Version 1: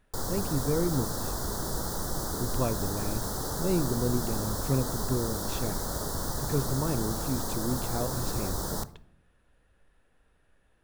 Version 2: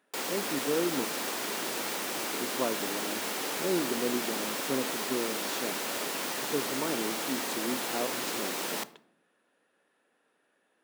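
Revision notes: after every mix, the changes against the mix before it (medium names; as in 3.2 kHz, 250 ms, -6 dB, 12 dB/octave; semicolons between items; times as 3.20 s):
background: remove Butterworth band-stop 2.5 kHz, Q 0.84; master: add high-pass 240 Hz 24 dB/octave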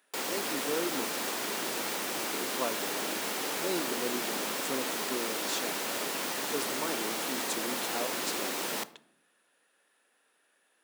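speech: add tilt EQ +3 dB/octave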